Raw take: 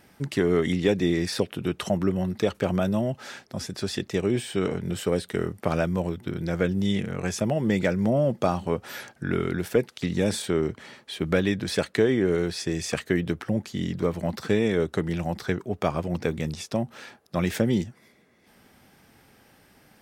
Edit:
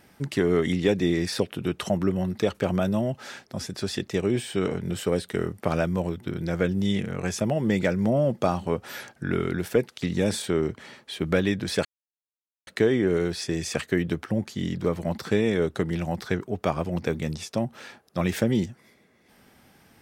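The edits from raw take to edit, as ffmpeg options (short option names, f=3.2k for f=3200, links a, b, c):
-filter_complex "[0:a]asplit=2[a][b];[a]atrim=end=11.85,asetpts=PTS-STARTPTS,afade=t=out:st=11.846:d=0.004:c=hsin,apad=pad_dur=0.82[c];[b]atrim=start=11.85,asetpts=PTS-STARTPTS,afade=t=in:d=0.004:c=hsin[d];[c][d]concat=n=2:v=0:a=1"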